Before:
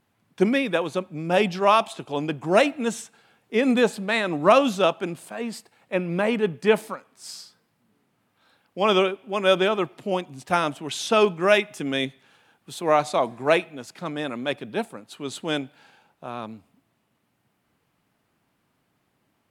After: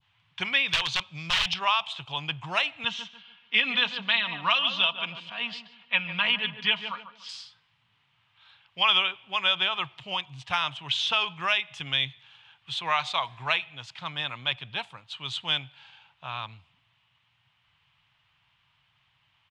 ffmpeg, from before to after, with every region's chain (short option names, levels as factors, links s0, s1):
-filter_complex "[0:a]asettb=1/sr,asplit=3[s0][s1][s2];[s0]atrim=end=0.684[s3];[s1]atrim=start=0.68:end=1.54,asetpts=PTS-STARTPTS,afade=t=in:d=0.004:c=qsin,afade=t=out:st=0.856:d=0.004:c=qsin,equalizer=f=5300:t=o:w=1.5:g=14.5,aeval=exprs='(mod(6.68*val(0)+1,2)-1)/6.68':c=same[s4];[s2]atrim=start=1.536[s5];[s3][s4]acrossfade=d=0.004:c1=hsin:c2=qsin[s6];[s6][s5]acrossfade=d=0.004:c1=qsin:c2=hsin,asettb=1/sr,asplit=3[s7][s8][s9];[s7]atrim=end=2.844[s10];[s8]atrim=start=2.84:end=7.29,asetpts=PTS-STARTPTS,afade=t=in:d=0.004:c=qsin,afade=t=out:st=4.446:d=0.004:c=qsin,highpass=180,equalizer=f=210:t=q:w=4:g=4,equalizer=f=460:t=q:w=4:g=-6,equalizer=f=780:t=q:w=4:g=-4,equalizer=f=3000:t=q:w=4:g=6,lowpass=f=5400:w=0.5412,lowpass=f=5400:w=1.3066,aecho=1:1:4.2:0.58,atrim=end_sample=196245,asplit=2[s11][s12];[s12]adelay=145,lowpass=f=1400:p=1,volume=0.316,asplit=2[s13][s14];[s14]adelay=145,lowpass=f=1400:p=1,volume=0.34,asplit=2[s15][s16];[s16]adelay=145,lowpass=f=1400:p=1,volume=0.34,asplit=2[s17][s18];[s18]adelay=145,lowpass=f=1400:p=1,volume=0.34[s19];[s11][s13][s15][s17][s19]amix=inputs=5:normalize=0,atrim=end_sample=196245[s20];[s9]atrim=start=7.286[s21];[s10][s20]acrossfade=d=0.004:c1=hsin:c2=qsin[s22];[s22][s21]acrossfade=d=0.004:c1=qsin:c2=hsin,firequalizer=gain_entry='entry(130,0);entry(220,-22);entry(410,-21);entry(950,1);entry(1400,-1);entry(3100,12);entry(4500,-1);entry(12000,-28)':delay=0.05:min_phase=1,acrossover=split=840|4200[s23][s24][s25];[s23]acompressor=threshold=0.0112:ratio=4[s26];[s24]acompressor=threshold=0.0891:ratio=4[s27];[s25]acompressor=threshold=0.0158:ratio=4[s28];[s26][s27][s28]amix=inputs=3:normalize=0,adynamicequalizer=threshold=0.00251:dfrequency=2000:dqfactor=0.75:tfrequency=2000:tqfactor=0.75:attack=5:release=100:ratio=0.375:range=2.5:mode=cutabove:tftype=bell,volume=1.26"